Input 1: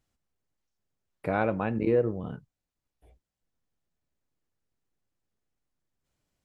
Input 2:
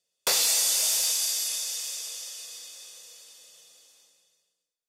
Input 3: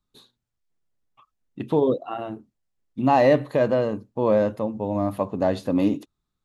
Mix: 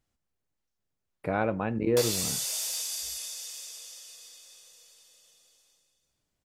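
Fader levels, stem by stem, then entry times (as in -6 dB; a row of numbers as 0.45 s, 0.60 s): -1.0 dB, -7.5 dB, mute; 0.00 s, 1.70 s, mute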